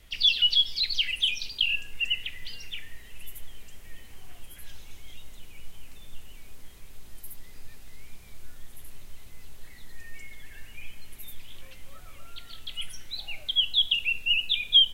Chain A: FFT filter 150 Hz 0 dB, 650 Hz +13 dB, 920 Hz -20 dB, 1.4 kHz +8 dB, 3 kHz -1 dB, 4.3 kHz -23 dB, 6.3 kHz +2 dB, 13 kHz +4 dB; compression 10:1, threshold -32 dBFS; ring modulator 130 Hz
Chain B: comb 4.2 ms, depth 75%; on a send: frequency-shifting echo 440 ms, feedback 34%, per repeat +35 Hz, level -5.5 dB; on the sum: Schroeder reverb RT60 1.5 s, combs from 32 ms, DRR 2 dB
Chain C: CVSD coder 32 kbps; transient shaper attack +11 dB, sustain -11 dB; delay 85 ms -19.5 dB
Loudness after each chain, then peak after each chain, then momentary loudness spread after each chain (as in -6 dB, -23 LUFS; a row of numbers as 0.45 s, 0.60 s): -39.5 LUFS, -19.5 LUFS, -21.0 LUFS; -22.5 dBFS, -3.5 dBFS, -5.0 dBFS; 4 LU, 22 LU, 18 LU